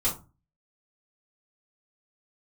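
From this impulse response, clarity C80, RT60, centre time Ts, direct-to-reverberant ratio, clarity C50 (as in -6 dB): 16.5 dB, 0.30 s, 23 ms, -7.5 dB, 10.0 dB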